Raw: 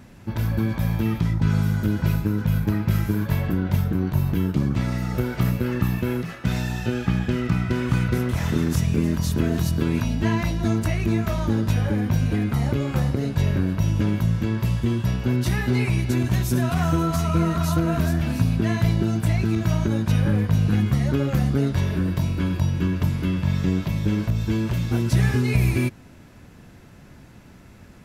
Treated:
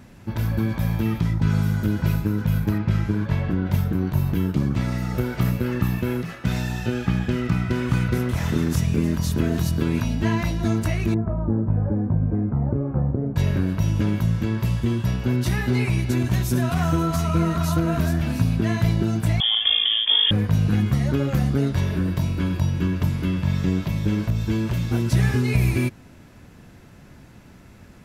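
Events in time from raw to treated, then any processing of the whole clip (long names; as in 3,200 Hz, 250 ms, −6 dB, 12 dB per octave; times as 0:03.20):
0:02.78–0:03.66: high-frequency loss of the air 79 metres
0:11.14–0:13.36: Bessel low-pass filter 760 Hz, order 4
0:19.40–0:20.31: voice inversion scrambler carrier 3,400 Hz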